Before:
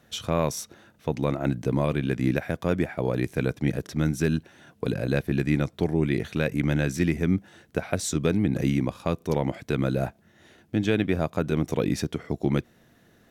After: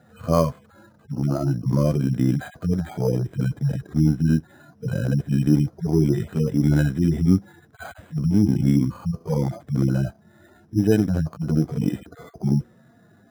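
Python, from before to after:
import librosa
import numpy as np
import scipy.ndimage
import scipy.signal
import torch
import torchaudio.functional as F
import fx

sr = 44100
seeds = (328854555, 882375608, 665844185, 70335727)

y = fx.hpss_only(x, sr, part='harmonic')
y = np.repeat(scipy.signal.resample_poly(y, 1, 8), 8)[:len(y)]
y = fx.high_shelf_res(y, sr, hz=1800.0, db=-6.0, q=1.5)
y = F.gain(torch.from_numpy(y), 7.0).numpy()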